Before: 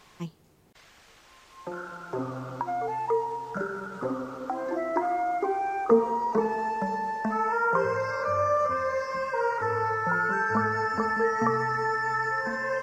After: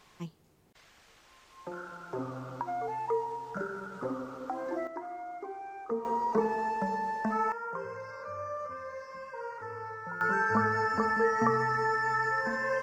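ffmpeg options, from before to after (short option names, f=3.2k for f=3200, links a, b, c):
-af "asetnsamples=n=441:p=0,asendcmd='4.87 volume volume -13.5dB;6.05 volume volume -2.5dB;7.52 volume volume -13dB;10.21 volume volume -1.5dB',volume=-4.5dB"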